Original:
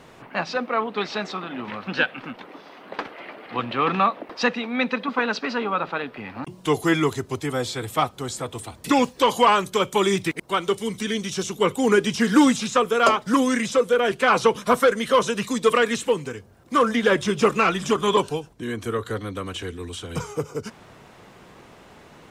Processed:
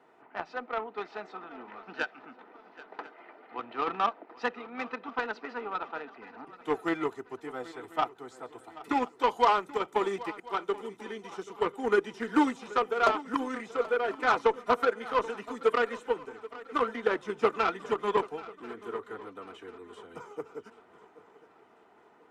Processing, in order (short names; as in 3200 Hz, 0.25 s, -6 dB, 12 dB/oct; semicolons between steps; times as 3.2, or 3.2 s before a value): three-band isolator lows -21 dB, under 290 Hz, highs -15 dB, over 2000 Hz; notch comb 550 Hz; added harmonics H 7 -23 dB, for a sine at -7 dBFS; on a send: swung echo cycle 1.041 s, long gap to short 3:1, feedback 40%, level -18 dB; on the sum: gain -3.5 dB